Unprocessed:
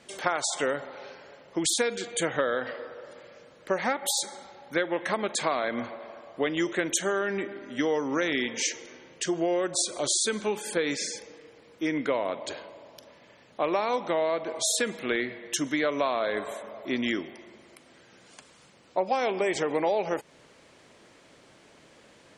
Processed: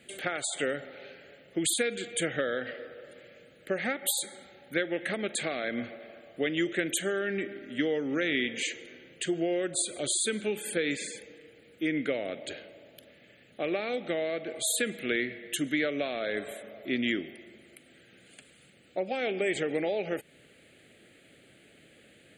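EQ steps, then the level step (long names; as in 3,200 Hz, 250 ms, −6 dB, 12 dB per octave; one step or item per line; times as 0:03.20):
high-pass filter 46 Hz
high-shelf EQ 6,200 Hz +7.5 dB
phaser with its sweep stopped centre 2,400 Hz, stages 4
0.0 dB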